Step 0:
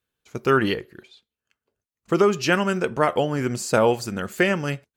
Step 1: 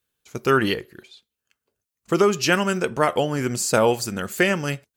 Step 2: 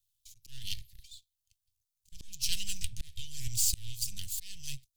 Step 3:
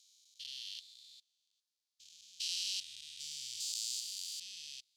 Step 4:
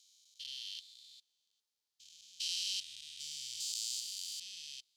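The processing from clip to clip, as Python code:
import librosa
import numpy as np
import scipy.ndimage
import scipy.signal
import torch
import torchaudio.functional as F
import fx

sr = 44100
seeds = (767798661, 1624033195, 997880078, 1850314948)

y1 = fx.high_shelf(x, sr, hz=4500.0, db=8.5)
y2 = np.maximum(y1, 0.0)
y2 = scipy.signal.sosfilt(scipy.signal.cheby2(4, 70, [350.0, 1100.0], 'bandstop', fs=sr, output='sos'), y2)
y2 = fx.auto_swell(y2, sr, attack_ms=423.0)
y2 = y2 * librosa.db_to_amplitude(3.0)
y3 = fx.spec_steps(y2, sr, hold_ms=400)
y3 = fx.bandpass_q(y3, sr, hz=4200.0, q=1.7)
y3 = y3 * librosa.db_to_amplitude(6.0)
y4 = fx.small_body(y3, sr, hz=(440.0, 860.0, 3100.0), ring_ms=45, db=7)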